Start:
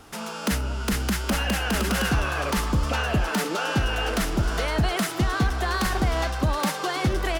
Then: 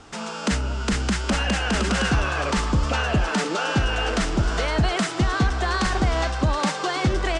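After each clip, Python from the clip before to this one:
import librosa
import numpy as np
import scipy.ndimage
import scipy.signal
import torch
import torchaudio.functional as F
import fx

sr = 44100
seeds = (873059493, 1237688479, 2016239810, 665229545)

y = scipy.signal.sosfilt(scipy.signal.butter(8, 8700.0, 'lowpass', fs=sr, output='sos'), x)
y = y * 10.0 ** (2.0 / 20.0)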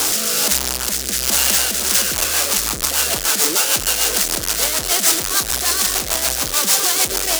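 y = np.sign(x) * np.sqrt(np.mean(np.square(x)))
y = fx.bass_treble(y, sr, bass_db=-11, treble_db=15)
y = fx.rotary_switch(y, sr, hz=1.2, then_hz=6.7, switch_at_s=1.56)
y = y * 10.0 ** (2.0 / 20.0)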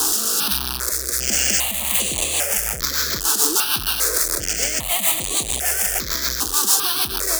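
y = fx.phaser_held(x, sr, hz=2.5, low_hz=580.0, high_hz=5300.0)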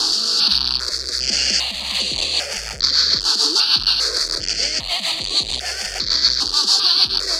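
y = fx.lowpass_res(x, sr, hz=4500.0, q=8.6)
y = y * 10.0 ** (-3.0 / 20.0)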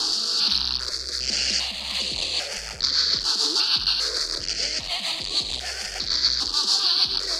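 y = x + 10.0 ** (-11.5 / 20.0) * np.pad(x, (int(79 * sr / 1000.0), 0))[:len(x)]
y = fx.doppler_dist(y, sr, depth_ms=0.12)
y = y * 10.0 ** (-5.5 / 20.0)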